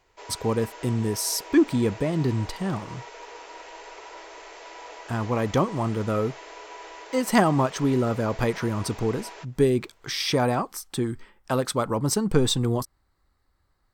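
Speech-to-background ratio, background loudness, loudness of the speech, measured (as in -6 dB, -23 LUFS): 16.5 dB, -42.0 LUFS, -25.5 LUFS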